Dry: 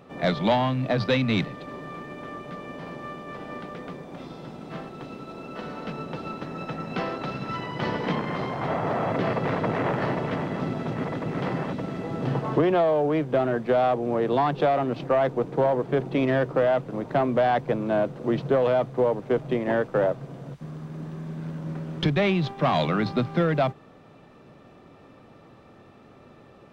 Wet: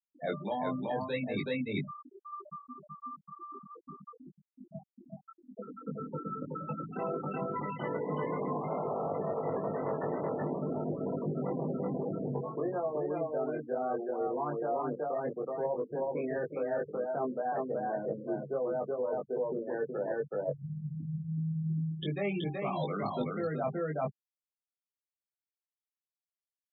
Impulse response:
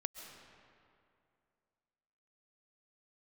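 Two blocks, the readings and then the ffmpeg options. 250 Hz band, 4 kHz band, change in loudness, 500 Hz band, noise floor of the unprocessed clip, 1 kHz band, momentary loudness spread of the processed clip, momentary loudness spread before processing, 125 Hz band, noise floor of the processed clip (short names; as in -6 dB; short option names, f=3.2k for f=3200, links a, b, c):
-9.5 dB, under -10 dB, -9.5 dB, -8.5 dB, -51 dBFS, -9.5 dB, 13 LU, 15 LU, -9.5 dB, under -85 dBFS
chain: -filter_complex "[0:a]highpass=f=170:p=1,bandreject=f=60:t=h:w=6,bandreject=f=120:t=h:w=6,bandreject=f=180:t=h:w=6,bandreject=f=240:t=h:w=6,bandreject=f=300:t=h:w=6,afftfilt=real='re*gte(hypot(re,im),0.0891)':imag='im*gte(hypot(re,im),0.0891)':win_size=1024:overlap=0.75,adynamicequalizer=threshold=0.0112:dfrequency=450:dqfactor=4.1:tfrequency=450:tqfactor=4.1:attack=5:release=100:ratio=0.375:range=2.5:mode=boostabove:tftype=bell,aecho=1:1:376:0.668,areverse,acompressor=threshold=-32dB:ratio=12,areverse,asplit=2[a][b];[b]adelay=20,volume=-3dB[c];[a][c]amix=inputs=2:normalize=0"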